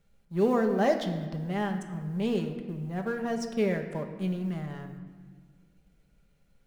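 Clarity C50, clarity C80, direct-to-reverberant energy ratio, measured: 8.0 dB, 9.5 dB, 4.0 dB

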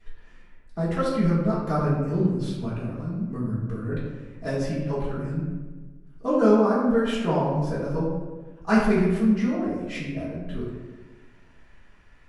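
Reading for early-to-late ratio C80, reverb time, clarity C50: 3.5 dB, 1.3 s, 1.0 dB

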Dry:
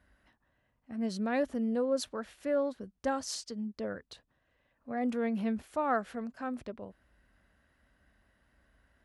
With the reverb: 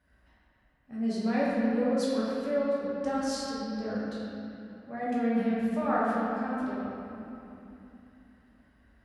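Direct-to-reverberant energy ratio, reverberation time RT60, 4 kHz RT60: −8.5 dB, 2.9 s, 1.9 s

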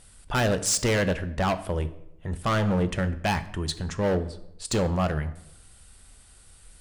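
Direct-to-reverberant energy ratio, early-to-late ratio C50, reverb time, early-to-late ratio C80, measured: 10.5 dB, 15.0 dB, 0.80 s, 17.5 dB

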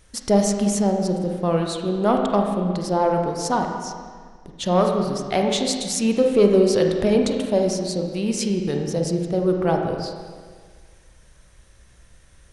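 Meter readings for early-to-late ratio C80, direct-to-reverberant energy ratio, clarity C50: 5.0 dB, 2.0 dB, 3.5 dB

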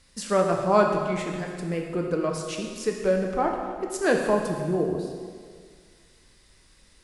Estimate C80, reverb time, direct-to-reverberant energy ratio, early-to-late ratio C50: 5.0 dB, 1.9 s, 1.0 dB, 3.5 dB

